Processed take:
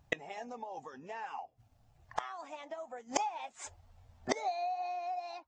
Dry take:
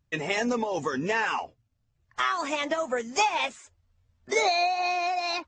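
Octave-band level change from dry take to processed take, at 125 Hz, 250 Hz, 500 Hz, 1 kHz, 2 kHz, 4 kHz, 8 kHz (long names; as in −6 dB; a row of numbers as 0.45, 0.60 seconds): −14.0, −13.5, −12.0, −10.0, −15.5, −16.5, −8.0 decibels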